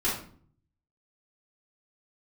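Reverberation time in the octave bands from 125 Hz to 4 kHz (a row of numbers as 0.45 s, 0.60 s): 1.0 s, 0.75 s, 0.55 s, 0.45 s, 0.40 s, 0.35 s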